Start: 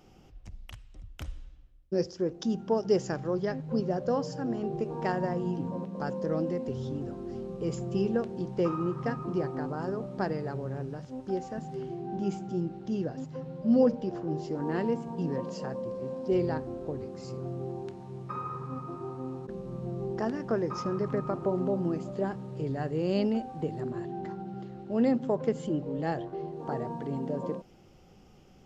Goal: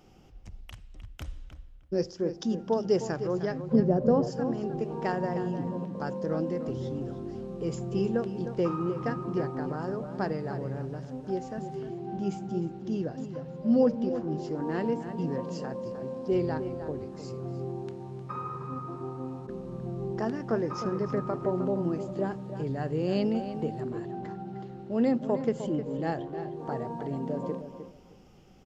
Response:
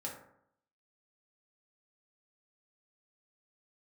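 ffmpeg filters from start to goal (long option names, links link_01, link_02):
-filter_complex "[0:a]asettb=1/sr,asplit=3[link_01][link_02][link_03];[link_01]atrim=end=3.734[link_04];[link_02]atrim=start=3.73:end=4.27,asetpts=PTS-STARTPTS,afade=type=in:duration=0.004:curve=qsin,afade=type=out:start_time=0.536:duration=0.004:curve=qsin,tiltshelf=frequency=970:gain=8[link_05];[link_03]atrim=start=4.266[link_06];[link_04][link_05]acrossfade=duration=0.004:curve1=hsin:curve2=qsin[link_07];[link_07][link_06]acrossfade=duration=0.004:curve1=qsin:curve2=hsin,asplit=2[link_08][link_09];[link_09]adelay=307,lowpass=frequency=3600:poles=1,volume=-10dB,asplit=2[link_10][link_11];[link_11]adelay=307,lowpass=frequency=3600:poles=1,volume=0.18,asplit=2[link_12][link_13];[link_13]adelay=307,lowpass=frequency=3600:poles=1,volume=0.18[link_14];[link_08][link_10][link_12][link_14]amix=inputs=4:normalize=0"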